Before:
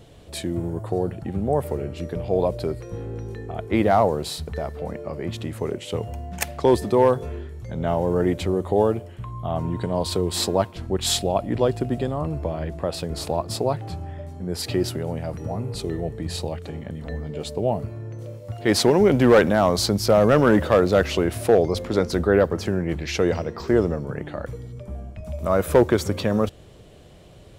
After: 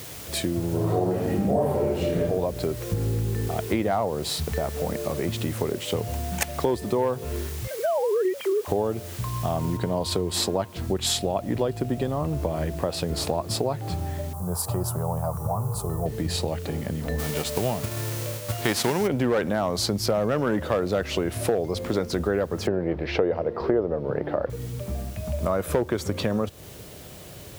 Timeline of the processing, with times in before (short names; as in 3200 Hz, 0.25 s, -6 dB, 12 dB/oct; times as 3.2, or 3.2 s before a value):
0.69–2.21 reverb throw, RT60 0.94 s, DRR -9 dB
2.91–3.48 tone controls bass +8 dB, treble -14 dB
7.67–8.68 sine-wave speech
9.77 noise floor step -45 dB -52 dB
14.33–16.06 EQ curve 150 Hz 0 dB, 280 Hz -16 dB, 400 Hz -9 dB, 1100 Hz +10 dB, 2000 Hz -22 dB, 4200 Hz -14 dB, 10000 Hz +5 dB
17.18–19.06 spectral whitening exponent 0.6
22.67–24.5 EQ curve 210 Hz 0 dB, 520 Hz +10 dB, 4800 Hz -9 dB, 7000 Hz -24 dB
whole clip: HPF 57 Hz; compressor 4:1, threshold -27 dBFS; gain +4.5 dB